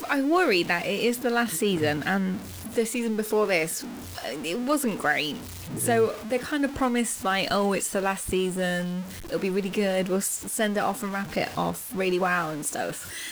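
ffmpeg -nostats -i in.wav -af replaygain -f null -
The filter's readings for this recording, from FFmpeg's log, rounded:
track_gain = +6.1 dB
track_peak = 0.207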